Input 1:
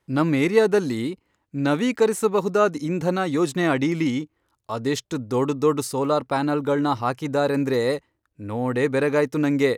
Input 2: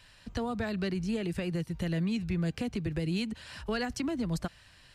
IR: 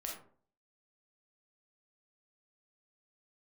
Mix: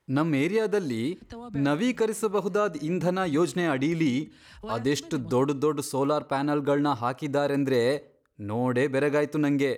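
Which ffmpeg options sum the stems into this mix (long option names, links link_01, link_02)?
-filter_complex "[0:a]volume=-2dB,asplit=3[link_01][link_02][link_03];[link_02]volume=-18dB[link_04];[1:a]agate=range=-33dB:threshold=-49dB:ratio=3:detection=peak,acompressor=mode=upward:threshold=-37dB:ratio=2.5,adelay=950,volume=-6.5dB[link_05];[link_03]apad=whole_len=259868[link_06];[link_05][link_06]sidechaincompress=threshold=-27dB:ratio=8:attack=10:release=734[link_07];[2:a]atrim=start_sample=2205[link_08];[link_04][link_08]afir=irnorm=-1:irlink=0[link_09];[link_01][link_07][link_09]amix=inputs=3:normalize=0,alimiter=limit=-15dB:level=0:latency=1:release=378"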